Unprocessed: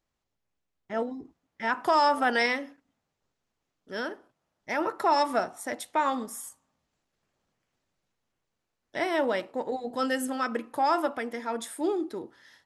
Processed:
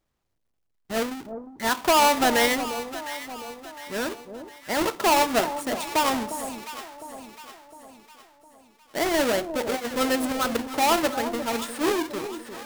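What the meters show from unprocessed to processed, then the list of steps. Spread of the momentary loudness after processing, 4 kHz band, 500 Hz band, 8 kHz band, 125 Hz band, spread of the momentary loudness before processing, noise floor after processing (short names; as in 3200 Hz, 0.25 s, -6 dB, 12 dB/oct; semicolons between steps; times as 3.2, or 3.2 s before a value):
19 LU, +9.5 dB, +4.5 dB, +12.0 dB, n/a, 15 LU, -74 dBFS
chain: half-waves squared off; echo with dull and thin repeats by turns 0.354 s, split 940 Hz, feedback 67%, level -9 dB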